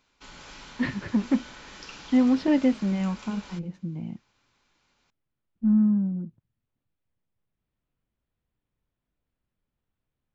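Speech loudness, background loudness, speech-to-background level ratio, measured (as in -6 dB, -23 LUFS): -25.5 LUFS, -44.5 LUFS, 19.0 dB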